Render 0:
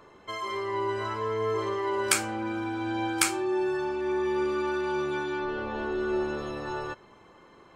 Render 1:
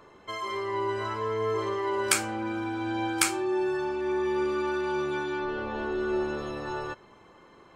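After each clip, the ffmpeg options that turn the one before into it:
ffmpeg -i in.wav -af anull out.wav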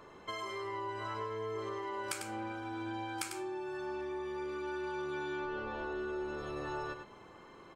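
ffmpeg -i in.wav -af "acompressor=threshold=-36dB:ratio=6,aecho=1:1:98:0.447,volume=-1dB" out.wav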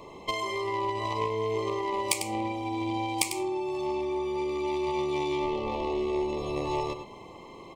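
ffmpeg -i in.wav -filter_complex "[0:a]asplit=2[link_01][link_02];[link_02]acrusher=bits=4:mix=0:aa=0.5,volume=-3dB[link_03];[link_01][link_03]amix=inputs=2:normalize=0,asuperstop=centerf=1500:order=12:qfactor=1.9,volume=9dB" out.wav

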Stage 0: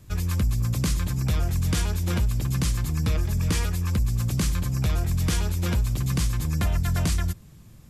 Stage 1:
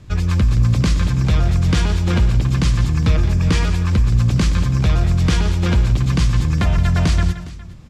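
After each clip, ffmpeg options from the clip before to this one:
ffmpeg -i in.wav -filter_complex "[0:a]lowpass=4800,asplit=2[link_01][link_02];[link_02]aecho=0:1:120|172|410:0.188|0.237|0.119[link_03];[link_01][link_03]amix=inputs=2:normalize=0,volume=8dB" out.wav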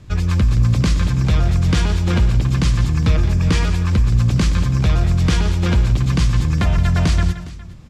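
ffmpeg -i in.wav -af anull out.wav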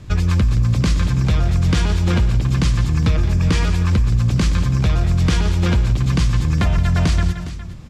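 ffmpeg -i in.wav -af "acompressor=threshold=-18dB:ratio=3,volume=4dB" out.wav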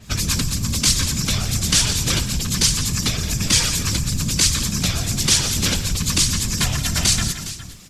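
ffmpeg -i in.wav -af "afftfilt=real='hypot(re,im)*cos(2*PI*random(0))':imag='hypot(re,im)*sin(2*PI*random(1))':win_size=512:overlap=0.75,crystalizer=i=8.5:c=0,adynamicequalizer=threshold=0.0158:dfrequency=3500:dqfactor=0.7:tfrequency=3500:tqfactor=0.7:attack=5:release=100:ratio=0.375:range=3.5:mode=boostabove:tftype=highshelf,volume=-1.5dB" out.wav

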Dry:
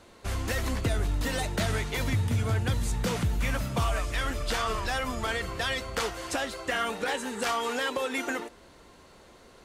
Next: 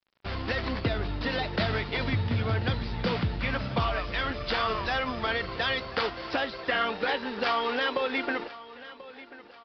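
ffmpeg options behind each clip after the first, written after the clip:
ffmpeg -i in.wav -af "highpass=frequency=110:poles=1,aresample=11025,aeval=exprs='sgn(val(0))*max(abs(val(0))-0.00422,0)':channel_layout=same,aresample=44100,aecho=1:1:1037|2074|3111:0.133|0.056|0.0235,volume=3dB" out.wav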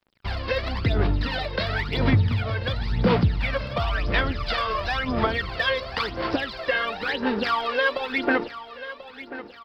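ffmpeg -i in.wav -filter_complex "[0:a]asplit=2[link_01][link_02];[link_02]acompressor=threshold=-34dB:ratio=6,volume=0.5dB[link_03];[link_01][link_03]amix=inputs=2:normalize=0,aphaser=in_gain=1:out_gain=1:delay=1.9:decay=0.69:speed=0.96:type=sinusoidal,volume=-3dB" out.wav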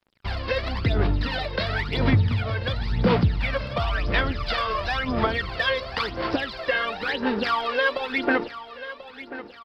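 ffmpeg -i in.wav -af "aresample=32000,aresample=44100" out.wav

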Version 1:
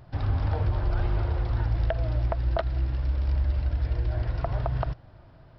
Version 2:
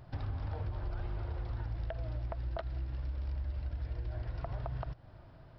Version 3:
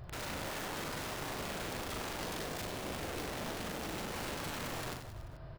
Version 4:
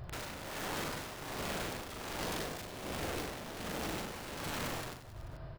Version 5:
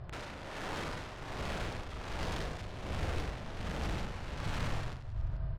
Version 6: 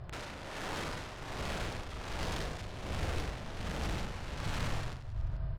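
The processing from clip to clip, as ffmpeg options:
ffmpeg -i in.wav -af "acompressor=threshold=-34dB:ratio=3,volume=-3dB" out.wav
ffmpeg -i in.wav -af "flanger=delay=1.6:depth=1.8:regen=-56:speed=1.1:shape=triangular,aeval=exprs='(mod(178*val(0)+1,2)-1)/178':channel_layout=same,aecho=1:1:40|96|174.4|284.2|437.8:0.631|0.398|0.251|0.158|0.1,volume=7.5dB" out.wav
ffmpeg -i in.wav -af "tremolo=f=1.3:d=0.59,volume=2.5dB" out.wav
ffmpeg -i in.wav -af "asubboost=boost=5:cutoff=130,adynamicsmooth=sensitivity=4.5:basefreq=4600" out.wav
ffmpeg -i in.wav -af "highshelf=frequency=4500:gain=5" out.wav

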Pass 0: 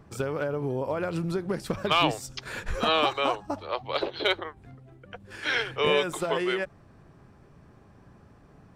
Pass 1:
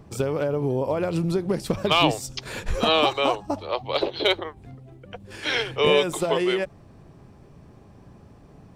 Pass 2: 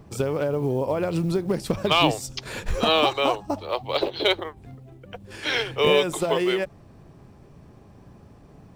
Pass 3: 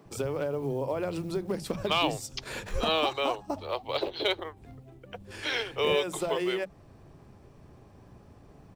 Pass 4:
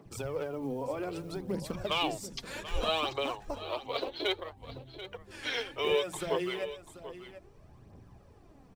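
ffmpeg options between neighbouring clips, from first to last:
ffmpeg -i in.wav -af "equalizer=frequency=1500:width=1.6:gain=-7.5,volume=5.5dB" out.wav
ffmpeg -i in.wav -af "acrusher=bits=9:mode=log:mix=0:aa=0.000001" out.wav
ffmpeg -i in.wav -filter_complex "[0:a]asplit=2[link_01][link_02];[link_02]acompressor=threshold=-29dB:ratio=6,volume=-1dB[link_03];[link_01][link_03]amix=inputs=2:normalize=0,acrossover=split=180[link_04][link_05];[link_04]adelay=50[link_06];[link_06][link_05]amix=inputs=2:normalize=0,volume=-8.5dB" out.wav
ffmpeg -i in.wav -af "aphaser=in_gain=1:out_gain=1:delay=4.4:decay=0.52:speed=0.63:type=triangular,aecho=1:1:737:0.211,volume=-5dB" out.wav

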